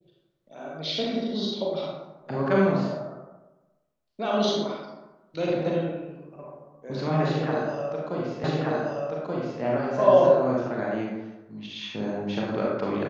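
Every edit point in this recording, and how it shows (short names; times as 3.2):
8.44 repeat of the last 1.18 s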